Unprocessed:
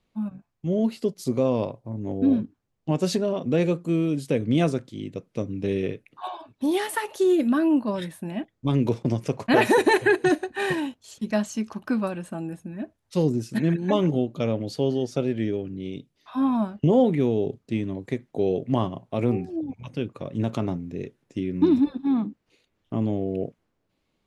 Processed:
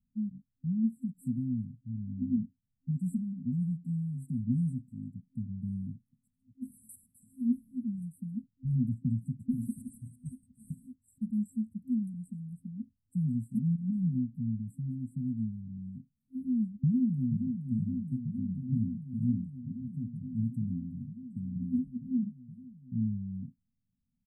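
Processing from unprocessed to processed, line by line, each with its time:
0:16.84–0:17.59: delay throw 470 ms, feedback 85%, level −7 dB
whole clip: brick-wall band-stop 260–7,600 Hz; parametric band 11,000 Hz −10.5 dB 2.5 octaves; level −4.5 dB

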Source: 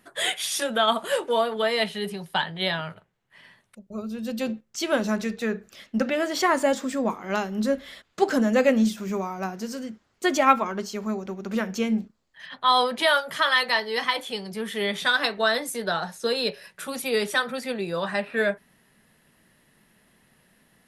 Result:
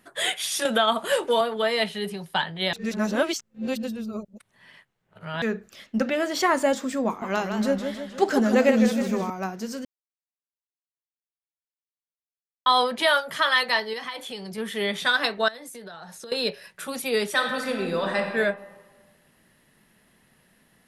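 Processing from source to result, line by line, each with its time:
0:00.65–0:01.41: multiband upward and downward compressor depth 70%
0:02.73–0:05.42: reverse
0:07.06–0:09.30: feedback echo with a swinging delay time 156 ms, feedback 56%, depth 149 cents, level −7 dB
0:09.85–0:12.66: silence
0:13.93–0:14.58: downward compressor 3 to 1, threshold −32 dBFS
0:15.48–0:16.32: downward compressor 12 to 1, threshold −37 dBFS
0:17.32–0:18.19: thrown reverb, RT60 1.5 s, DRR 2.5 dB

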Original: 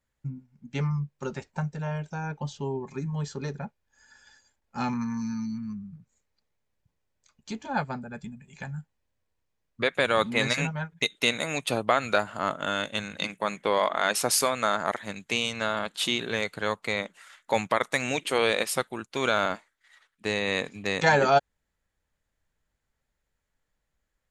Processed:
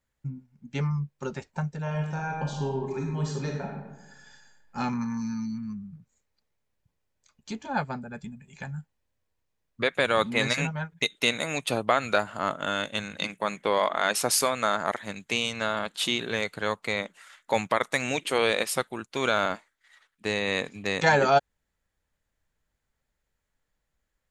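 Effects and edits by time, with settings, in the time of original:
0:01.82–0:04.78: thrown reverb, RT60 1.1 s, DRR 0 dB

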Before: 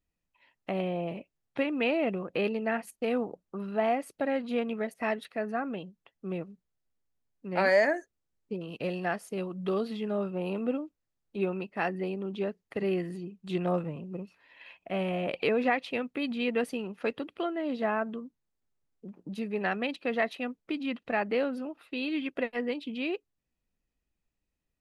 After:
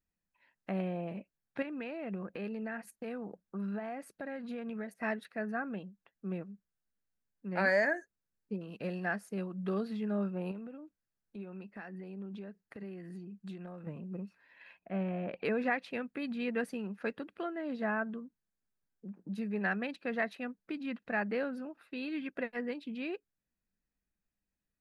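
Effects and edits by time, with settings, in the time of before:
0:01.62–0:05.03: downward compressor 4 to 1, threshold −32 dBFS
0:10.51–0:13.87: downward compressor 5 to 1, threshold −39 dBFS
0:14.79–0:15.45: head-to-tape spacing loss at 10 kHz 22 dB
whole clip: thirty-one-band graphic EQ 200 Hz +8 dB, 1,600 Hz +9 dB, 3,150 Hz −6 dB; level −6.5 dB

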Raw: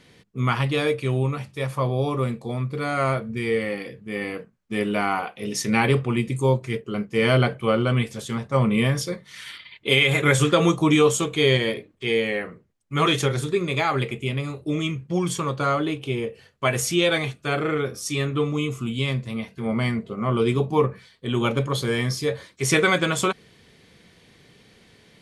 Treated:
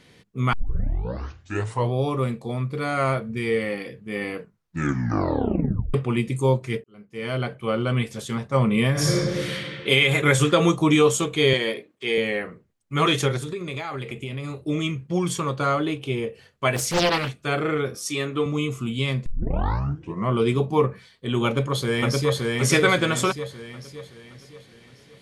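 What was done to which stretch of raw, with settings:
0:00.53: tape start 1.40 s
0:04.39: tape stop 1.55 s
0:06.84–0:08.18: fade in
0:08.91–0:09.54: thrown reverb, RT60 2.1 s, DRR −7.5 dB
0:11.53–0:12.18: Bessel high-pass filter 270 Hz
0:13.37–0:14.59: downward compressor, threshold −27 dBFS
0:16.76–0:17.29: highs frequency-modulated by the lows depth 0.97 ms
0:17.95–0:18.46: high-pass filter 200 Hz
0:19.26: tape start 1.03 s
0:21.45–0:22.48: delay throw 570 ms, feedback 45%, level −1.5 dB

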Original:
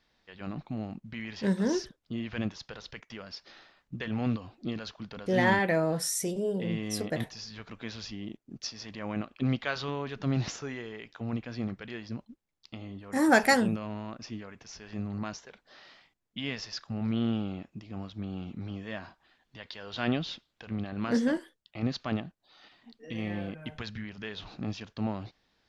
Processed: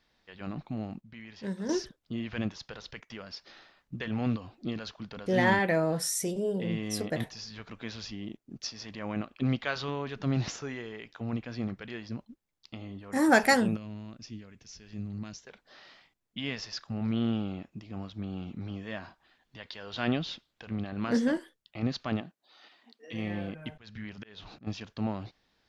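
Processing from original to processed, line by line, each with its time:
0:01.01–0:01.69: clip gain −8 dB
0:13.77–0:15.47: parametric band 930 Hz −13.5 dB 2.6 octaves
0:22.20–0:23.12: high-pass filter 180 Hz → 450 Hz
0:23.70–0:24.67: volume swells 285 ms

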